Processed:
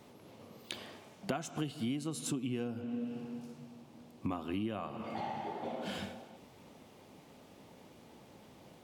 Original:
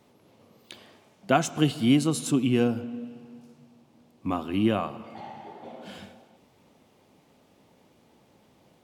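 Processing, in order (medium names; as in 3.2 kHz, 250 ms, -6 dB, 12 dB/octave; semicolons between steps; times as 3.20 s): compression 10:1, threshold -37 dBFS, peak gain reduction 21 dB; trim +3.5 dB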